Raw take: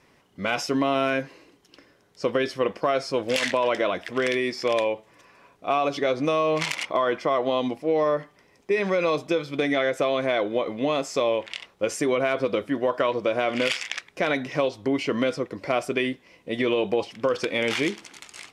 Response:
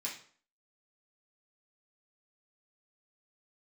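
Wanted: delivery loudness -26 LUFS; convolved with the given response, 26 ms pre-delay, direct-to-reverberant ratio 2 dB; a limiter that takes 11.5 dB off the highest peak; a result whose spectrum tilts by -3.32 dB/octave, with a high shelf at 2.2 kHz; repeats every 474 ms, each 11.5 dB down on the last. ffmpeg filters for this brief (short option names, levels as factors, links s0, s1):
-filter_complex "[0:a]highshelf=f=2200:g=6.5,alimiter=limit=0.158:level=0:latency=1,aecho=1:1:474|948|1422:0.266|0.0718|0.0194,asplit=2[s0][s1];[1:a]atrim=start_sample=2205,adelay=26[s2];[s1][s2]afir=irnorm=-1:irlink=0,volume=0.708[s3];[s0][s3]amix=inputs=2:normalize=0,volume=0.944"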